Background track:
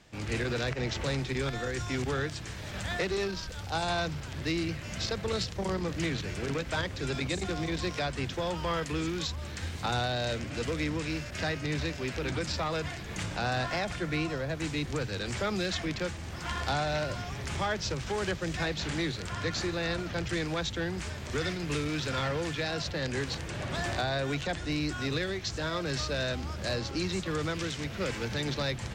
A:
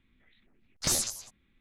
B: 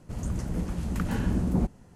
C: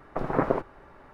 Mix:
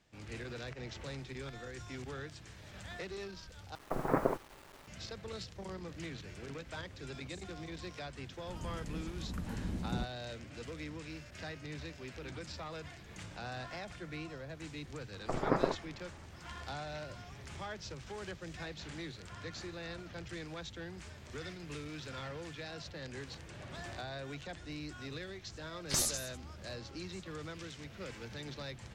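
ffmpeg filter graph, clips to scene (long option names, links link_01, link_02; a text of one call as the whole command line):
ffmpeg -i bed.wav -i cue0.wav -i cue1.wav -i cue2.wav -filter_complex "[3:a]asplit=2[link_01][link_02];[0:a]volume=-12.5dB[link_03];[link_01]acrusher=bits=7:mix=0:aa=0.000001[link_04];[link_03]asplit=2[link_05][link_06];[link_05]atrim=end=3.754[link_07];[link_04]atrim=end=1.13,asetpts=PTS-STARTPTS,volume=-6dB[link_08];[link_06]atrim=start=4.876[link_09];[2:a]atrim=end=1.95,asetpts=PTS-STARTPTS,volume=-12dB,afade=type=in:duration=0.004:curve=hsin,afade=type=out:start_time=1.946:duration=0.004:curve=hsin,adelay=8380[link_10];[link_02]atrim=end=1.13,asetpts=PTS-STARTPTS,volume=-6dB,afade=type=in:duration=0.004:curve=hsin,afade=type=out:start_time=1.126:duration=0.004:curve=hsin,adelay=15130[link_11];[1:a]atrim=end=1.6,asetpts=PTS-STARTPTS,volume=-4.5dB,afade=type=in:duration=0.004:curve=hsin,afade=type=out:start_time=1.596:duration=0.004:curve=hsin,adelay=25070[link_12];[link_07][link_08]acrossfade=duration=0.004:curve1=hsin:curve2=hsin[link_13];[link_13][link_09]acrossfade=duration=0.004:curve1=hsin:curve2=hsin[link_14];[link_14][link_10][link_11][link_12]amix=inputs=4:normalize=0" out.wav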